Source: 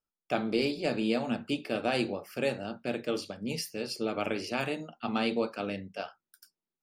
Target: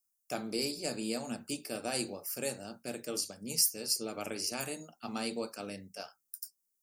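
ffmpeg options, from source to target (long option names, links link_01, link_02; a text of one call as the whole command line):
ffmpeg -i in.wav -af "aexciter=amount=12.5:drive=3.5:freq=5100,volume=-7.5dB" out.wav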